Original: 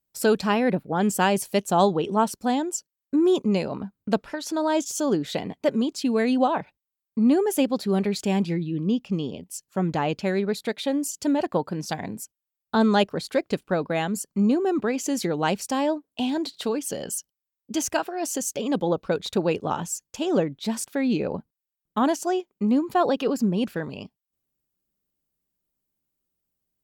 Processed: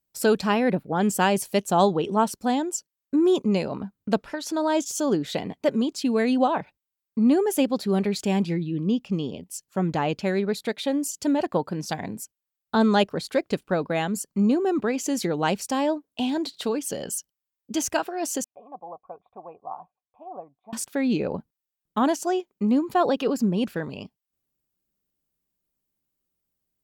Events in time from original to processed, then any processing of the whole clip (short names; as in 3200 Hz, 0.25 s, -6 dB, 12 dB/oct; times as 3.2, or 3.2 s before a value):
18.44–20.73 vocal tract filter a